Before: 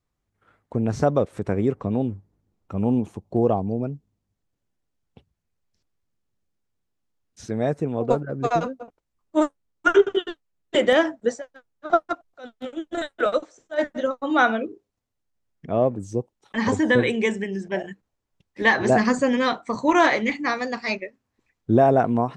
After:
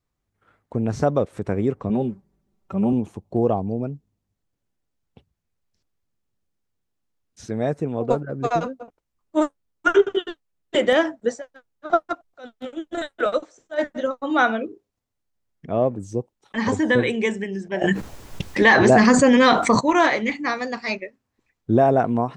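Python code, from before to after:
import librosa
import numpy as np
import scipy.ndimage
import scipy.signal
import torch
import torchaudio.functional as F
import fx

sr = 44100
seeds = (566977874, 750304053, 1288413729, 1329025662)

y = fx.comb(x, sr, ms=5.2, depth=0.78, at=(1.89, 2.93))
y = fx.env_flatten(y, sr, amount_pct=70, at=(17.81, 19.79), fade=0.02)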